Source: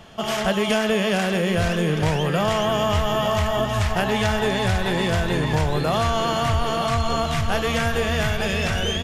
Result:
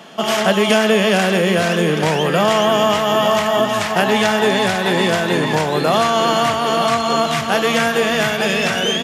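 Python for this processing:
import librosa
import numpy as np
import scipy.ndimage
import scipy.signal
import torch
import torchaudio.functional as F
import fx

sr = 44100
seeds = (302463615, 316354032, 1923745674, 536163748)

y = scipy.signal.sosfilt(scipy.signal.butter(4, 180.0, 'highpass', fs=sr, output='sos'), x)
y = y * 10.0 ** (7.0 / 20.0)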